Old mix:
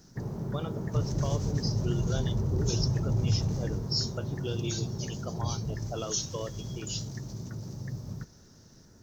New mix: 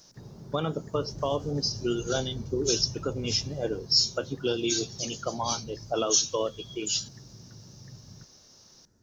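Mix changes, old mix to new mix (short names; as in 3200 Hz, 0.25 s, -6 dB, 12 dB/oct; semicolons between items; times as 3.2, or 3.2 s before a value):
speech +8.5 dB; background -10.5 dB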